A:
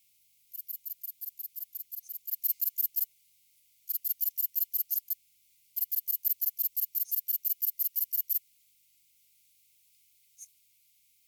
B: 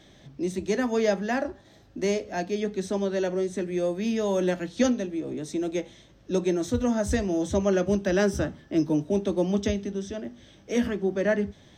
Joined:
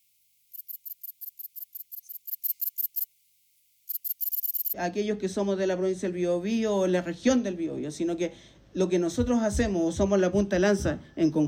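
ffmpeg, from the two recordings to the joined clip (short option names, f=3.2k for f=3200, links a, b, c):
-filter_complex "[0:a]apad=whole_dur=11.47,atrim=end=11.47,asplit=5[a][b][c][d][e];[a]atrim=end=4.302[f];[b]atrim=start=4.188:end=4.302[g];[c]atrim=start=4.188:end=4.302[h];[d]atrim=start=4.188:end=4.302[i];[e]atrim=start=4.188:end=4.302[j];[1:a]atrim=start=2.278:end=9.01[k];[f][g]acrossfade=d=0.004:c1=hsin:c2=hsin[l];[l][h]acrossfade=d=0.004:c1=hsin:c2=hsin[m];[m][i]acrossfade=d=0.004:c1=hsin:c2=hsin[n];[n][j]acrossfade=d=0.004:c1=hsin:c2=hsin[o];[o][k]acrossfade=d=0.004:c1=hsin:c2=hsin"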